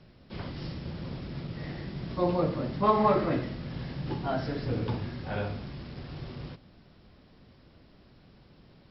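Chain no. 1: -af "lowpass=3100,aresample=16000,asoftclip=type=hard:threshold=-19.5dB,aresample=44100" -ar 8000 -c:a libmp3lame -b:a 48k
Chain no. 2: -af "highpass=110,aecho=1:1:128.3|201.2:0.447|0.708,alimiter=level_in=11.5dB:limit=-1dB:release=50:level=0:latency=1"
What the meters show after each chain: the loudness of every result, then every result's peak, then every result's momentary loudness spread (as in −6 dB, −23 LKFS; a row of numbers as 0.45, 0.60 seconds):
−33.0, −18.5 LKFS; −19.0, −1.0 dBFS; 16, 17 LU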